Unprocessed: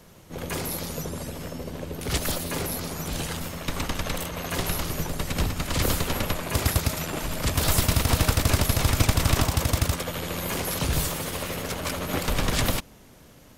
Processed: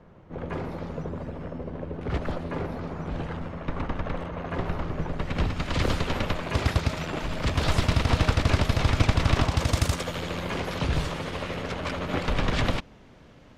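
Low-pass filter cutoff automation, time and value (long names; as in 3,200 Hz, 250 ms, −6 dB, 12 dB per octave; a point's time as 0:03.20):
0:04.93 1,500 Hz
0:05.59 3,800 Hz
0:09.47 3,800 Hz
0:09.86 9,000 Hz
0:10.49 3,400 Hz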